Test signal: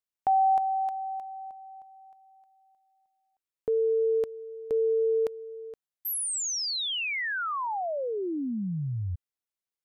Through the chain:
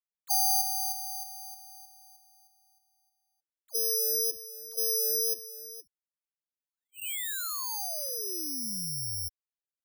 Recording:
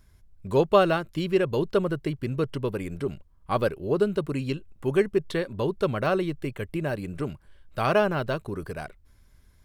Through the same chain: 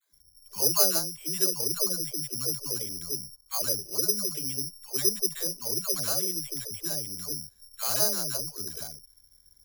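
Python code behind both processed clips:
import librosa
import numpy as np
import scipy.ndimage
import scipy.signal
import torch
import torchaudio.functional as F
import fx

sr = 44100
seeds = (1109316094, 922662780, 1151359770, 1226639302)

y = fx.dispersion(x, sr, late='lows', ms=133.0, hz=460.0)
y = (np.kron(scipy.signal.resample_poly(y, 1, 8), np.eye(8)[0]) * 8)[:len(y)]
y = F.gain(torch.from_numpy(y), -12.5).numpy()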